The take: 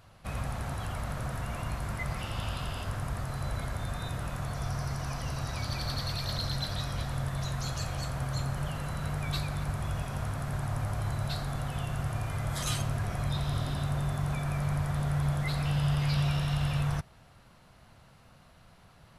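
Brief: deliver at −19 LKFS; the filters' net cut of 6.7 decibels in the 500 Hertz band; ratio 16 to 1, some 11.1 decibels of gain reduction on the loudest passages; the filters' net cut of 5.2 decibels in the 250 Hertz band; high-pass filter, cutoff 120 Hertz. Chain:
high-pass filter 120 Hz
parametric band 250 Hz −8.5 dB
parametric band 500 Hz −7.5 dB
downward compressor 16 to 1, threshold −40 dBFS
level +25 dB

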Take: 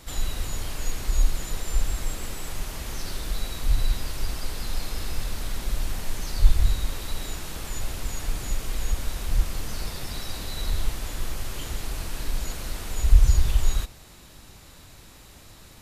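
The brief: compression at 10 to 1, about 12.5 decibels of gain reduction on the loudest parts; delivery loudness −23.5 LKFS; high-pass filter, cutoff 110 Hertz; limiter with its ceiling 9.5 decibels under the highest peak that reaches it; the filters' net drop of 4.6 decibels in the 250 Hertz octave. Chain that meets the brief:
high-pass filter 110 Hz
parametric band 250 Hz −6 dB
downward compressor 10 to 1, threshold −36 dBFS
level +21 dB
brickwall limiter −15.5 dBFS

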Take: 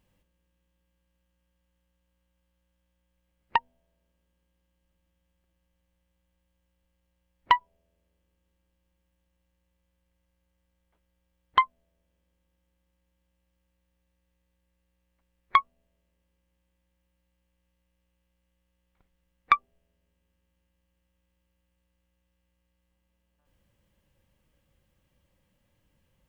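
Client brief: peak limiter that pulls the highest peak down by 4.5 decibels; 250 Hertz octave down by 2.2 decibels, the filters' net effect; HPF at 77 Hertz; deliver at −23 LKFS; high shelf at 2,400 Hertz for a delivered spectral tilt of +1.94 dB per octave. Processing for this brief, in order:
high-pass filter 77 Hz
parametric band 250 Hz −3 dB
high-shelf EQ 2,400 Hz −4.5 dB
level +7.5 dB
brickwall limiter −2.5 dBFS

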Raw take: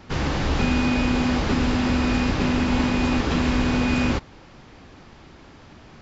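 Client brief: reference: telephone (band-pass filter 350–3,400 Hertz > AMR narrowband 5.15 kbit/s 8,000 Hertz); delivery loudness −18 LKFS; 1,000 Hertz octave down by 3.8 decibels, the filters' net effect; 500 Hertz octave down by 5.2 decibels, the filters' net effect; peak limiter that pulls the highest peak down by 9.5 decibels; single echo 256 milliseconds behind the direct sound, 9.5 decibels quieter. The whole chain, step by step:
parametric band 500 Hz −4 dB
parametric band 1,000 Hz −3.5 dB
brickwall limiter −20 dBFS
band-pass filter 350–3,400 Hz
single-tap delay 256 ms −9.5 dB
level +21 dB
AMR narrowband 5.15 kbit/s 8,000 Hz

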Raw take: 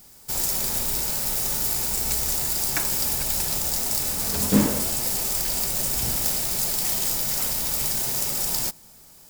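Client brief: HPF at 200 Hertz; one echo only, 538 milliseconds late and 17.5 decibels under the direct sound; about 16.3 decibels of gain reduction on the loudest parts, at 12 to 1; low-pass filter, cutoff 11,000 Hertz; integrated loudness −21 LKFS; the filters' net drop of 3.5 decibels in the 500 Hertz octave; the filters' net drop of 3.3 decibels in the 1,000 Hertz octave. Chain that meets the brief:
high-pass filter 200 Hz
low-pass filter 11,000 Hz
parametric band 500 Hz −3.5 dB
parametric band 1,000 Hz −3 dB
downward compressor 12 to 1, threshold −33 dBFS
single-tap delay 538 ms −17.5 dB
level +13 dB

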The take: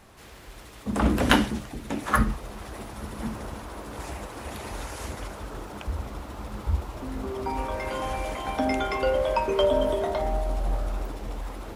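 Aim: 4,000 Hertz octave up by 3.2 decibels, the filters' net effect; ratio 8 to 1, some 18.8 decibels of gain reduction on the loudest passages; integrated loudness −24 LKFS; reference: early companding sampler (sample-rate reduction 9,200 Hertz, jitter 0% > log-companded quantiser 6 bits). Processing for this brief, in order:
parametric band 4,000 Hz +4.5 dB
downward compressor 8 to 1, threshold −35 dBFS
sample-rate reduction 9,200 Hz, jitter 0%
log-companded quantiser 6 bits
level +15.5 dB

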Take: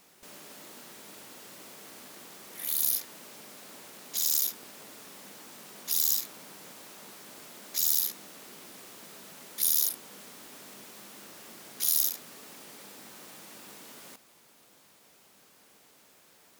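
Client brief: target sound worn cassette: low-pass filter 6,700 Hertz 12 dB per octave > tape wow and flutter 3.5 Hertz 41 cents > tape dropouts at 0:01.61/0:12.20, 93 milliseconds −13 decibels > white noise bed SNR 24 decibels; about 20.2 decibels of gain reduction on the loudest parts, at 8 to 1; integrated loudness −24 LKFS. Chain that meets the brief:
downward compressor 8 to 1, threshold −43 dBFS
low-pass filter 6,700 Hz 12 dB per octave
tape wow and flutter 3.5 Hz 41 cents
tape dropouts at 0:01.61/0:12.20, 93 ms −13 dB
white noise bed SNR 24 dB
level +27 dB

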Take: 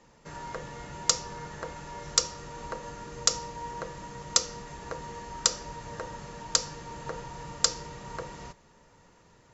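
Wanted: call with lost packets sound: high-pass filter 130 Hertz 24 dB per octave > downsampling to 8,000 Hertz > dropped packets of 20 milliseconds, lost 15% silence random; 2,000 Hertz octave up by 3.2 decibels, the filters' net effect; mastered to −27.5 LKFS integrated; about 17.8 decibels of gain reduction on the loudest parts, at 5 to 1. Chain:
parametric band 2,000 Hz +4 dB
downward compressor 5 to 1, threshold −42 dBFS
high-pass filter 130 Hz 24 dB per octave
downsampling to 8,000 Hz
dropped packets of 20 ms, lost 15% silence random
level +20 dB

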